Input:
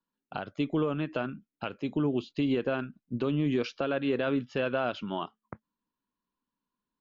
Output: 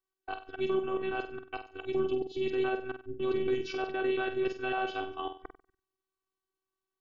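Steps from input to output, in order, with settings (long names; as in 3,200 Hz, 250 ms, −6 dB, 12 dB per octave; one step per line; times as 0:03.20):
reversed piece by piece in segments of 139 ms
flutter between parallel walls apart 8.2 metres, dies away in 0.37 s
phases set to zero 379 Hz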